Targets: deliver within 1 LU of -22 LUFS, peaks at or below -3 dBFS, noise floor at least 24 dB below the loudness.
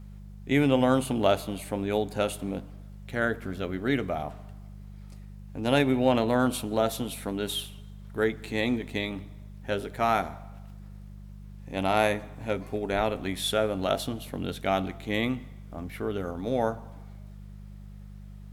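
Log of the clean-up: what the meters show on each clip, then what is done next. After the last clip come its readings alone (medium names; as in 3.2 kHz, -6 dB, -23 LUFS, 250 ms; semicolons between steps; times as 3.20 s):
hum 50 Hz; highest harmonic 200 Hz; hum level -41 dBFS; loudness -28.5 LUFS; peak level -8.0 dBFS; loudness target -22.0 LUFS
-> de-hum 50 Hz, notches 4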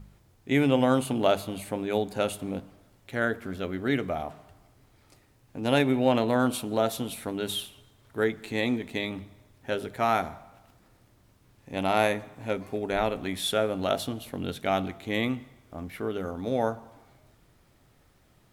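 hum not found; loudness -28.5 LUFS; peak level -8.0 dBFS; loudness target -22.0 LUFS
-> trim +6.5 dB; peak limiter -3 dBFS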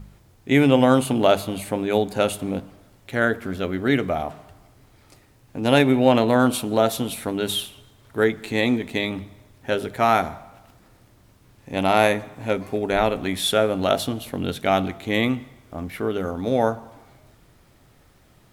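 loudness -22.0 LUFS; peak level -3.0 dBFS; noise floor -56 dBFS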